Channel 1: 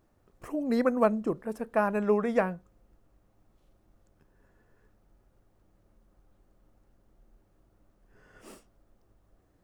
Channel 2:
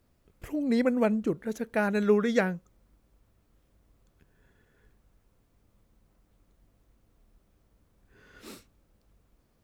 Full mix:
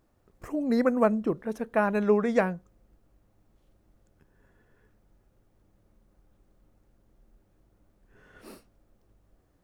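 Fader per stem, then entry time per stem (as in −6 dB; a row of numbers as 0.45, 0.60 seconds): −1.0, −8.5 decibels; 0.00, 0.00 seconds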